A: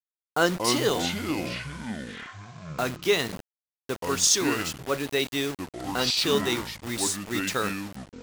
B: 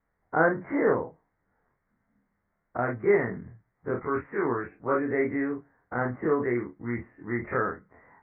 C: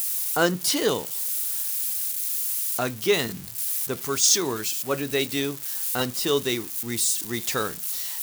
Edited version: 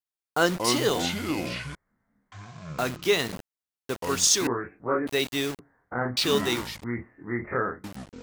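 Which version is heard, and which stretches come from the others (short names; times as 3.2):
A
1.75–2.32 from B
4.47–5.07 from B
5.59–6.17 from B
6.84–7.84 from B
not used: C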